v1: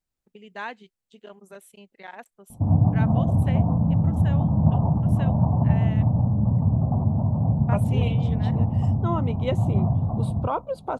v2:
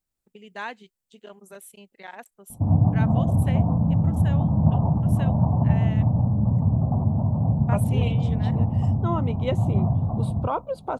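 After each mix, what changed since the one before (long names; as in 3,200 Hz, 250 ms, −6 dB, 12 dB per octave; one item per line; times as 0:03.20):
first voice: add high-shelf EQ 7,700 Hz +11 dB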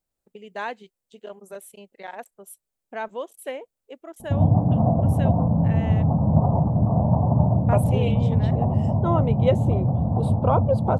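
background: entry +1.70 s
master: add parametric band 550 Hz +7.5 dB 1.3 octaves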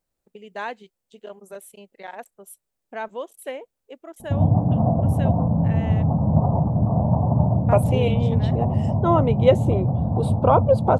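second voice +5.0 dB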